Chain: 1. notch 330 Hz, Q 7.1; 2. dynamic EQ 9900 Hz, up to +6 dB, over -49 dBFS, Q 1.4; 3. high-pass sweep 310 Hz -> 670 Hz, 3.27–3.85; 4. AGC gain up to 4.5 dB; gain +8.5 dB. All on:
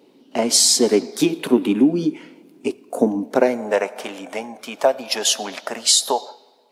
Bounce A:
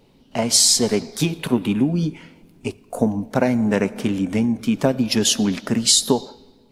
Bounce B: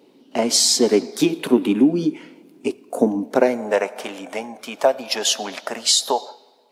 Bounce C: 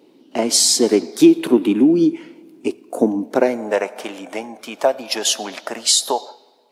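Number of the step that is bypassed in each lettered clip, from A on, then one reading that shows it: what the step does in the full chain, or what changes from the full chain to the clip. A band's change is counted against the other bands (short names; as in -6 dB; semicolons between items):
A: 3, 125 Hz band +11.0 dB; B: 2, 8 kHz band -2.5 dB; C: 1, 250 Hz band +4.0 dB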